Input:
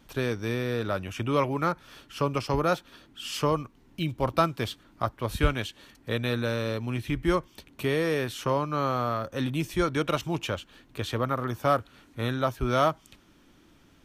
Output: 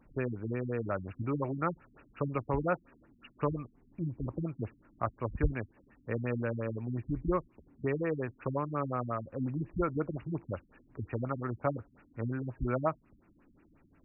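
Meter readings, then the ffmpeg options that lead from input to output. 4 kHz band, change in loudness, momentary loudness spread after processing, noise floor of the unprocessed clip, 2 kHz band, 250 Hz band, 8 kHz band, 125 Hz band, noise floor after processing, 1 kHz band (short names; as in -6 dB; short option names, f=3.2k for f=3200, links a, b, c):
under -30 dB, -7.0 dB, 9 LU, -59 dBFS, -10.5 dB, -5.0 dB, under -35 dB, -4.5 dB, -66 dBFS, -9.0 dB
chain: -af "afftfilt=real='re*lt(b*sr/1024,270*pow(2900/270,0.5+0.5*sin(2*PI*5.6*pts/sr)))':imag='im*lt(b*sr/1024,270*pow(2900/270,0.5+0.5*sin(2*PI*5.6*pts/sr)))':win_size=1024:overlap=0.75,volume=-4.5dB"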